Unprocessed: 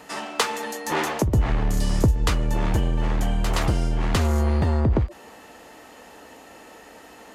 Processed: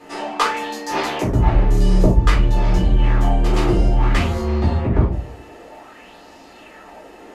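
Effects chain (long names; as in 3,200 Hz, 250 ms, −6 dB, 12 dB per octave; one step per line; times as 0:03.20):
high-shelf EQ 8,600 Hz −9.5 dB
rectangular room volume 200 cubic metres, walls furnished, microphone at 3.9 metres
auto-filter bell 0.55 Hz 360–5,200 Hz +9 dB
level −6 dB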